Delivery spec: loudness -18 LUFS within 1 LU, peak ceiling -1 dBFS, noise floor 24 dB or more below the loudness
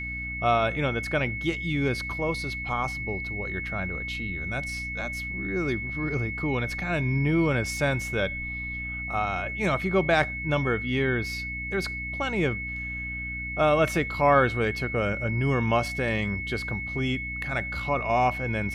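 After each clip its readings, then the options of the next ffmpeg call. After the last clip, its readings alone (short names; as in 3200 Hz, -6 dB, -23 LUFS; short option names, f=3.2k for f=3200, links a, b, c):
hum 60 Hz; harmonics up to 300 Hz; hum level -36 dBFS; steady tone 2200 Hz; tone level -32 dBFS; loudness -27.0 LUFS; peak -8.5 dBFS; loudness target -18.0 LUFS
-> -af "bandreject=f=60:t=h:w=6,bandreject=f=120:t=h:w=6,bandreject=f=180:t=h:w=6,bandreject=f=240:t=h:w=6,bandreject=f=300:t=h:w=6"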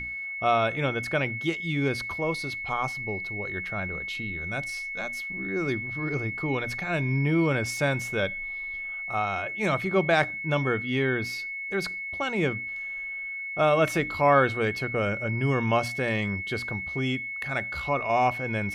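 hum none; steady tone 2200 Hz; tone level -32 dBFS
-> -af "bandreject=f=2.2k:w=30"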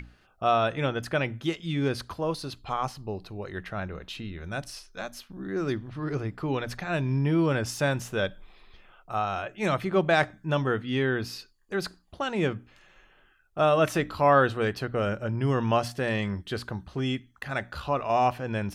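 steady tone none; loudness -28.0 LUFS; peak -9.0 dBFS; loudness target -18.0 LUFS
-> -af "volume=10dB,alimiter=limit=-1dB:level=0:latency=1"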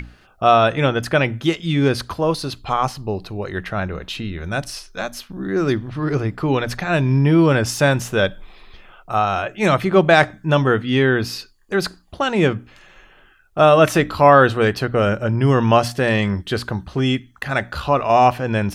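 loudness -18.5 LUFS; peak -1.0 dBFS; noise floor -52 dBFS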